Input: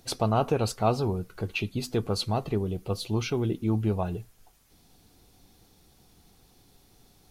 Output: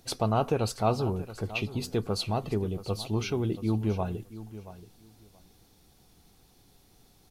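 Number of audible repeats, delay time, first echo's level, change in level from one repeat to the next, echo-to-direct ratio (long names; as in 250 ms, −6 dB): 2, 678 ms, −15.0 dB, −15.5 dB, −15.0 dB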